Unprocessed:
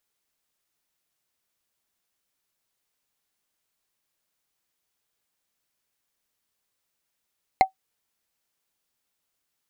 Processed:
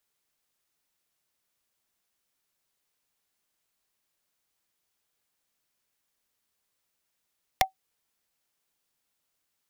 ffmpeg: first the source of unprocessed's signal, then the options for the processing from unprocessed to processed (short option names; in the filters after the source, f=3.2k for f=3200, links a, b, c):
-f lavfi -i "aevalsrc='0.422*pow(10,-3*t/0.11)*sin(2*PI*763*t)+0.188*pow(10,-3*t/0.033)*sin(2*PI*2103.6*t)+0.0841*pow(10,-3*t/0.015)*sin(2*PI*4123.3*t)+0.0376*pow(10,-3*t/0.008)*sin(2*PI*6815.9*t)+0.0168*pow(10,-3*t/0.005)*sin(2*PI*10178.4*t)':d=0.45:s=44100"
-filter_complex "[0:a]acrossover=split=130|670|1900[a][b][c][d];[c]acompressor=threshold=-31dB:ratio=6[e];[a][b][e][d]amix=inputs=4:normalize=0,aeval=exprs='(mod(3.55*val(0)+1,2)-1)/3.55':c=same"